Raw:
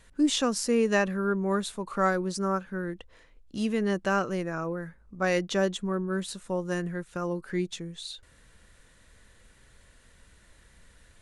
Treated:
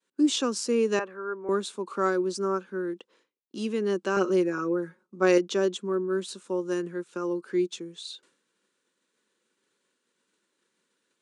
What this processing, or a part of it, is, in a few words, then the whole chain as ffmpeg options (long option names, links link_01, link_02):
car door speaker: -filter_complex "[0:a]highpass=92,equalizer=frequency=370:width_type=q:width=4:gain=7,equalizer=frequency=680:width_type=q:width=4:gain=-10,equalizer=frequency=1900:width_type=q:width=4:gain=-8,lowpass=frequency=9100:width=0.5412,lowpass=frequency=9100:width=1.3066,agate=range=-33dB:threshold=-52dB:ratio=3:detection=peak,highpass=frequency=220:width=0.5412,highpass=frequency=220:width=1.3066,asettb=1/sr,asplit=3[link_01][link_02][link_03];[link_01]atrim=end=0.994[link_04];[link_02]atrim=start=0.99:end=1.49,asetpts=PTS-STARTPTS,afade=type=in:duration=0.004:curve=qsin,afade=type=out:start_time=0.496:duration=0.004:curve=qsin,acrossover=split=520 2200:gain=0.141 1 0.112[link_05][link_06][link_07];[link_05][link_06][link_07]amix=inputs=3:normalize=0[link_08];[link_03]atrim=start=1.486[link_09];[link_04][link_08]acrossfade=duration=0.004:curve1=hsin:curve2=qsin[link_10];[link_10][link_09]acrossfade=duration=0.004:curve1=qsin:curve2=hsin,asettb=1/sr,asplit=3[link_11][link_12][link_13];[link_11]atrim=end=4.164[link_14];[link_12]atrim=start=4.16:end=5.38,asetpts=PTS-STARTPTS,afade=type=in:duration=0.004:curve=qsin,afade=type=out:start_time=1.216:duration=0.004:curve=qsin,aecho=1:1:5.5:0.97,atrim=end_sample=53802[link_15];[link_13]atrim=start=5.376[link_16];[link_14][link_15]acrossfade=duration=0.004:curve1=hsin:curve2=qsin[link_17];[link_17][link_16]acrossfade=duration=0.004:curve1=qsin:curve2=hsin"